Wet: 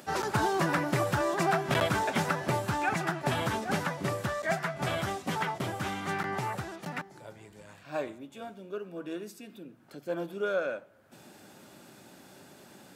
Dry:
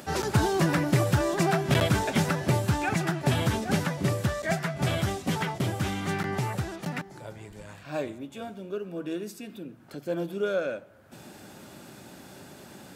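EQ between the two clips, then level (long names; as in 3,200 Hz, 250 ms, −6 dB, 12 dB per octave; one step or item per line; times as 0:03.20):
high-pass filter 150 Hz 6 dB per octave
dynamic equaliser 1,100 Hz, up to +7 dB, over −42 dBFS, Q 0.73
−5.0 dB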